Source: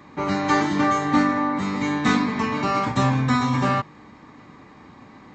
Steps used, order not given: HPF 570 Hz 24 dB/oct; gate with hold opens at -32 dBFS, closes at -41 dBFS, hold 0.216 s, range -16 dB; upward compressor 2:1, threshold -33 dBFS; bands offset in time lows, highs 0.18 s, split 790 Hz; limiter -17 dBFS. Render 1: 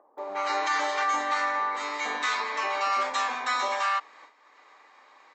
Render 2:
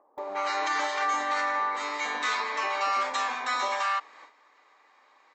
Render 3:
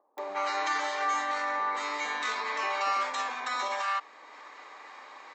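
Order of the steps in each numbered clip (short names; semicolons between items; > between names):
bands offset in time > gate with hold > upward compressor > HPF > limiter; HPF > limiter > bands offset in time > upward compressor > gate with hold; upward compressor > limiter > bands offset in time > gate with hold > HPF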